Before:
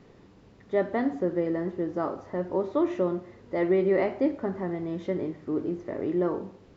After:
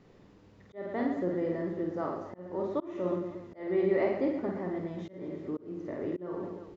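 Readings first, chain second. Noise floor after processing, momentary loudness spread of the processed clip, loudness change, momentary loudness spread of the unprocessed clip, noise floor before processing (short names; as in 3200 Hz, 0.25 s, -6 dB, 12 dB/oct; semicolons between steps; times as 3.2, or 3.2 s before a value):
-58 dBFS, 13 LU, -5.0 dB, 8 LU, -55 dBFS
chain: reverse bouncing-ball echo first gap 50 ms, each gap 1.4×, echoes 5; auto swell 0.305 s; gain -5.5 dB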